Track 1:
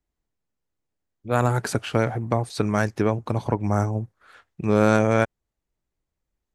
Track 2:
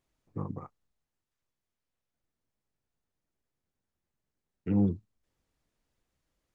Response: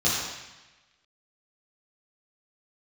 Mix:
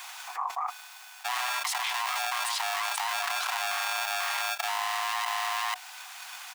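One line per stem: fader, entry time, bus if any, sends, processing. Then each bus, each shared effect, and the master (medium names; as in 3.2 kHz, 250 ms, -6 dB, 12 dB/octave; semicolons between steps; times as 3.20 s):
-4.5 dB, 0.00 s, no send, echo send -12.5 dB, saturation -21 dBFS, distortion -6 dB; polarity switched at an audio rate 500 Hz
-1.5 dB, 0.00 s, no send, no echo send, none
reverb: none
echo: delay 491 ms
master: gain riding within 5 dB 2 s; rippled Chebyshev high-pass 720 Hz, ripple 3 dB; level flattener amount 100%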